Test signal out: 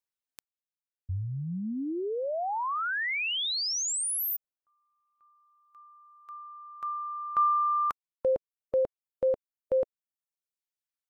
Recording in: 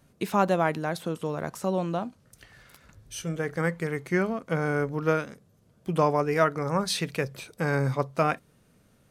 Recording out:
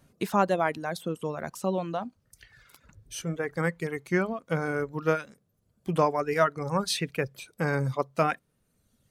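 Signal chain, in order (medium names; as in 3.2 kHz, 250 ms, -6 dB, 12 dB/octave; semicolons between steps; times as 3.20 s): reverb removal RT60 1.2 s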